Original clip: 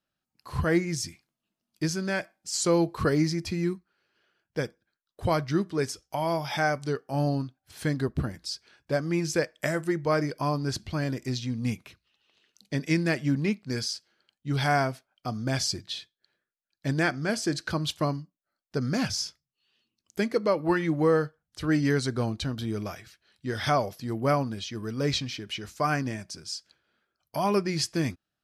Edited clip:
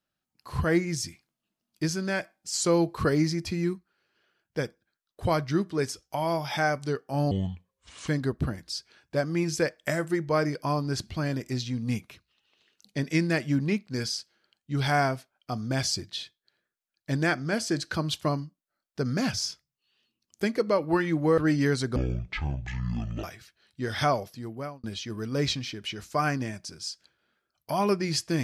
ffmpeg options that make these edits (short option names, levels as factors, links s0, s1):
-filter_complex "[0:a]asplit=7[s0][s1][s2][s3][s4][s5][s6];[s0]atrim=end=7.314[s7];[s1]atrim=start=7.31:end=7.84,asetpts=PTS-STARTPTS,asetrate=30429,aresample=44100[s8];[s2]atrim=start=7.836:end=21.142[s9];[s3]atrim=start=21.618:end=22.204[s10];[s4]atrim=start=22.2:end=22.89,asetpts=PTS-STARTPTS,asetrate=23814,aresample=44100[s11];[s5]atrim=start=22.886:end=24.49,asetpts=PTS-STARTPTS,afade=t=out:st=0.854:d=0.75[s12];[s6]atrim=start=24.49,asetpts=PTS-STARTPTS,afade=t=in:d=0.004:c=hsin[s13];[s7][s8]acrossfade=d=0.004:c1=hsin:c2=hsin[s14];[s14][s9]acrossfade=d=0.004:c1=hsin:c2=hsin[s15];[s15][s10]acrossfade=d=0.004:c1=hsin:c2=hsin[s16];[s16][s11]acrossfade=d=0.004:c1=hsin:c2=hsin[s17];[s12][s13]concat=n=2:v=0:a=1[s18];[s17][s18]acrossfade=d=0.004:c1=hsin:c2=hsin"